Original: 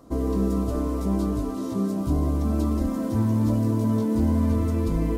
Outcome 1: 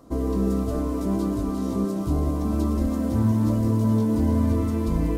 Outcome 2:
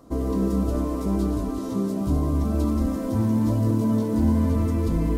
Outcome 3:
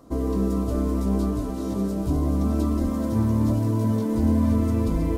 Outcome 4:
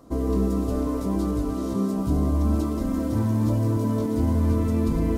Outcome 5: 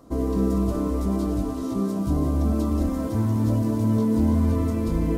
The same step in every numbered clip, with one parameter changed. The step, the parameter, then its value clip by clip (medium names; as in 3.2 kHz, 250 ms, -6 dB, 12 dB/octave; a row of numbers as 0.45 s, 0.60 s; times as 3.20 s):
chunks repeated in reverse, time: 462 ms, 106 ms, 706 ms, 290 ms, 181 ms